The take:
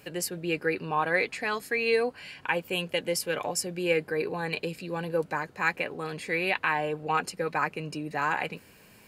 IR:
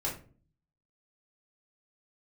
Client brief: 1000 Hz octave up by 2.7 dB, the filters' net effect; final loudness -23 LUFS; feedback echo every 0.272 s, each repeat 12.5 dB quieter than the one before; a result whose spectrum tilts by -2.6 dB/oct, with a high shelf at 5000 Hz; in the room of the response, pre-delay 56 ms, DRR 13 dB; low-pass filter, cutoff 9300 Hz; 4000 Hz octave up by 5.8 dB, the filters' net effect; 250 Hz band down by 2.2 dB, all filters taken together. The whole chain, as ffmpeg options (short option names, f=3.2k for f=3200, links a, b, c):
-filter_complex "[0:a]lowpass=9.3k,equalizer=f=250:t=o:g=-4,equalizer=f=1k:t=o:g=3,equalizer=f=4k:t=o:g=6.5,highshelf=f=5k:g=3.5,aecho=1:1:272|544|816:0.237|0.0569|0.0137,asplit=2[a][b];[1:a]atrim=start_sample=2205,adelay=56[c];[b][c]afir=irnorm=-1:irlink=0,volume=-17.5dB[d];[a][d]amix=inputs=2:normalize=0,volume=4dB"